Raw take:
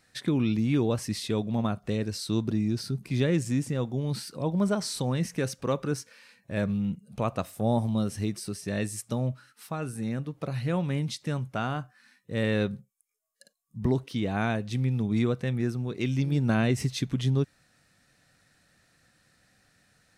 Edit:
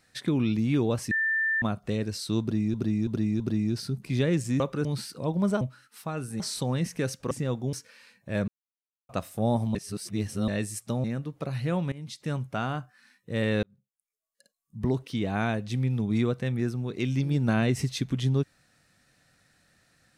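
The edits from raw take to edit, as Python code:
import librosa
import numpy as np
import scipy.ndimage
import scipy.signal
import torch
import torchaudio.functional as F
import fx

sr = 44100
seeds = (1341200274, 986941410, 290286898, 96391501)

y = fx.edit(x, sr, fx.bleep(start_s=1.11, length_s=0.51, hz=1780.0, db=-23.0),
    fx.repeat(start_s=2.41, length_s=0.33, count=4),
    fx.swap(start_s=3.61, length_s=0.42, other_s=5.7, other_length_s=0.25),
    fx.silence(start_s=6.7, length_s=0.61),
    fx.reverse_span(start_s=7.97, length_s=0.73),
    fx.move(start_s=9.26, length_s=0.79, to_s=4.79),
    fx.fade_in_from(start_s=10.93, length_s=0.4, floor_db=-20.0),
    fx.fade_in_span(start_s=12.64, length_s=1.46), tone=tone)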